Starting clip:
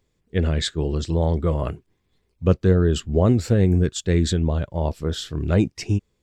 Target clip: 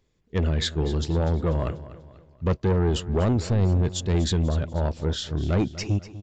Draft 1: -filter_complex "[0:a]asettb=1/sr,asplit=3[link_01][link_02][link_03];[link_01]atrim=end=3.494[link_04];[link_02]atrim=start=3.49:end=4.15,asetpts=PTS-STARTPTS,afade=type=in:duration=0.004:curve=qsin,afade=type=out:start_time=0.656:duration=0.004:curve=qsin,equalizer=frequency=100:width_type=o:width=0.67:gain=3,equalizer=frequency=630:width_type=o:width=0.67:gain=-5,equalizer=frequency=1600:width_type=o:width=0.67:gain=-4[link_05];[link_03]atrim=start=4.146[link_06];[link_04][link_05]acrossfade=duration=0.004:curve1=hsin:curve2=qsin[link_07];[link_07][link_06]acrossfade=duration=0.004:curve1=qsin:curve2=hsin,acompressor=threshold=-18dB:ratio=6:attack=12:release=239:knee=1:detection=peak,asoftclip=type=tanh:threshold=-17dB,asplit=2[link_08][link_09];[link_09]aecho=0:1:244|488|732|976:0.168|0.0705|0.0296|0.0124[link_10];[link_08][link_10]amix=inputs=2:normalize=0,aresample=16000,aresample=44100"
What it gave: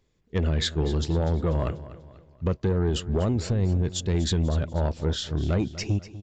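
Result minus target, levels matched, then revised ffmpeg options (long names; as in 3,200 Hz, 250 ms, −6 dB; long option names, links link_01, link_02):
downward compressor: peak gain reduction +7.5 dB
-filter_complex "[0:a]asettb=1/sr,asplit=3[link_01][link_02][link_03];[link_01]atrim=end=3.494[link_04];[link_02]atrim=start=3.49:end=4.15,asetpts=PTS-STARTPTS,afade=type=in:duration=0.004:curve=qsin,afade=type=out:start_time=0.656:duration=0.004:curve=qsin,equalizer=frequency=100:width_type=o:width=0.67:gain=3,equalizer=frequency=630:width_type=o:width=0.67:gain=-5,equalizer=frequency=1600:width_type=o:width=0.67:gain=-4[link_05];[link_03]atrim=start=4.146[link_06];[link_04][link_05]acrossfade=duration=0.004:curve1=hsin:curve2=qsin[link_07];[link_07][link_06]acrossfade=duration=0.004:curve1=qsin:curve2=hsin,asoftclip=type=tanh:threshold=-17dB,asplit=2[link_08][link_09];[link_09]aecho=0:1:244|488|732|976:0.168|0.0705|0.0296|0.0124[link_10];[link_08][link_10]amix=inputs=2:normalize=0,aresample=16000,aresample=44100"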